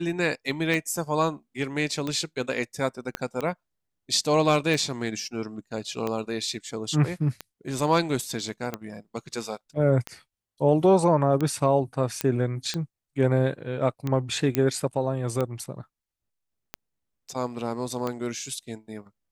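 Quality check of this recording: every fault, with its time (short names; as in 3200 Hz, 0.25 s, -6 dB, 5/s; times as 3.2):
tick 45 rpm
3.15 pop -13 dBFS
12.21 pop -8 dBFS
14.55 pop -8 dBFS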